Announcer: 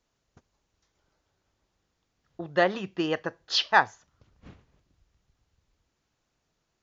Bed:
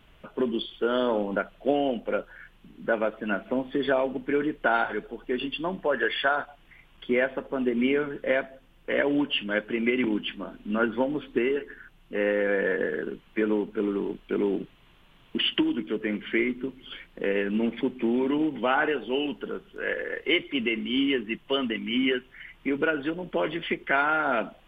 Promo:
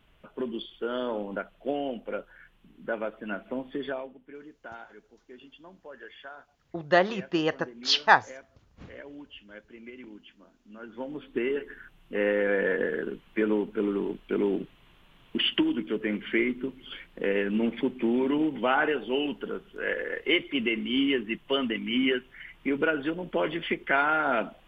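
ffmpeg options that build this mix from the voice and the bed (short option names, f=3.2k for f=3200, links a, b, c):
-filter_complex "[0:a]adelay=4350,volume=1.5dB[a];[1:a]volume=13.5dB,afade=t=out:st=3.76:d=0.4:silence=0.199526,afade=t=in:st=10.82:d=0.91:silence=0.105925[b];[a][b]amix=inputs=2:normalize=0"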